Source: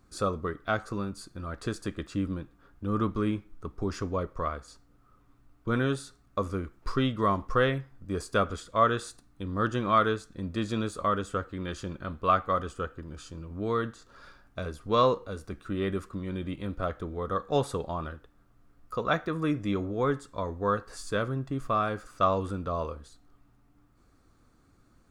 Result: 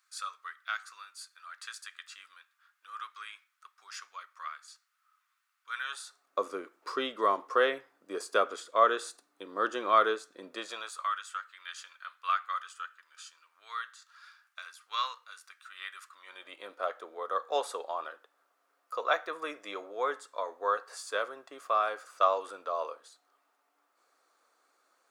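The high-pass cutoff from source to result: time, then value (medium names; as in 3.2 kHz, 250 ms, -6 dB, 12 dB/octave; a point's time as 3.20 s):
high-pass 24 dB/octave
5.78 s 1.4 kHz
6.38 s 380 Hz
10.49 s 380 Hz
11.13 s 1.3 kHz
16.04 s 1.3 kHz
16.60 s 520 Hz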